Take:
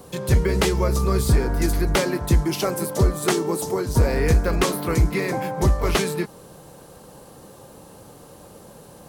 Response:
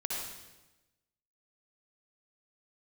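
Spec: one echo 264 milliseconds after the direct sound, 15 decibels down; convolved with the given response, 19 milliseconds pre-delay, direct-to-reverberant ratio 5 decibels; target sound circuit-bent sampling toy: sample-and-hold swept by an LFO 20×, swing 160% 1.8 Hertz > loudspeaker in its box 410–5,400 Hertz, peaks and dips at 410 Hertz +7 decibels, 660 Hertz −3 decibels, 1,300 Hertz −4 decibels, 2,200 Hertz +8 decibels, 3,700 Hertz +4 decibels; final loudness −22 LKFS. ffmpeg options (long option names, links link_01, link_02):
-filter_complex "[0:a]aecho=1:1:264:0.178,asplit=2[link_01][link_02];[1:a]atrim=start_sample=2205,adelay=19[link_03];[link_02][link_03]afir=irnorm=-1:irlink=0,volume=-8.5dB[link_04];[link_01][link_04]amix=inputs=2:normalize=0,acrusher=samples=20:mix=1:aa=0.000001:lfo=1:lforange=32:lforate=1.8,highpass=410,equalizer=frequency=410:width_type=q:width=4:gain=7,equalizer=frequency=660:width_type=q:width=4:gain=-3,equalizer=frequency=1300:width_type=q:width=4:gain=-4,equalizer=frequency=2200:width_type=q:width=4:gain=8,equalizer=frequency=3700:width_type=q:width=4:gain=4,lowpass=frequency=5400:width=0.5412,lowpass=frequency=5400:width=1.3066,volume=1dB"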